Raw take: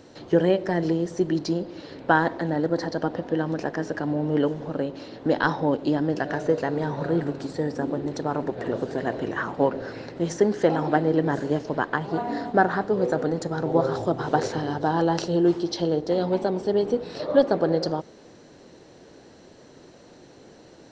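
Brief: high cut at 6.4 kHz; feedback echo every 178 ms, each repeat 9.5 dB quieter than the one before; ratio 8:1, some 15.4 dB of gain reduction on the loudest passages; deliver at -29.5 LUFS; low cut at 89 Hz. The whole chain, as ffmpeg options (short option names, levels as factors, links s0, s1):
-af "highpass=89,lowpass=6400,acompressor=threshold=0.0316:ratio=8,aecho=1:1:178|356|534|712:0.335|0.111|0.0365|0.012,volume=1.88"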